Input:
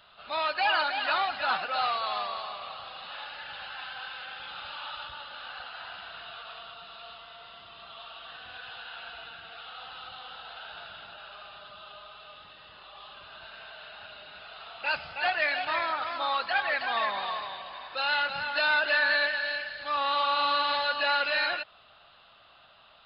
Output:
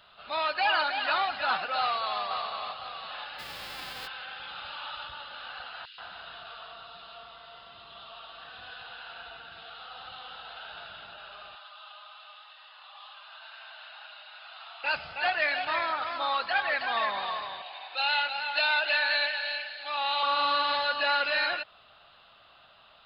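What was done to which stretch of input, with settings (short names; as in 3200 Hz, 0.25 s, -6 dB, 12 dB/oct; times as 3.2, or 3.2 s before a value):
1.79–2.21 echo throw 0.51 s, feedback 40%, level -7 dB
3.38–4.06 spectral whitening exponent 0.3
5.85–10.07 bands offset in time highs, lows 0.13 s, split 2400 Hz
11.55–14.84 Chebyshev high-pass 790 Hz, order 3
17.62–20.23 speaker cabinet 480–4700 Hz, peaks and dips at 520 Hz -5 dB, 790 Hz +6 dB, 1100 Hz -8 dB, 1700 Hz -4 dB, 2500 Hz +5 dB, 4100 Hz +4 dB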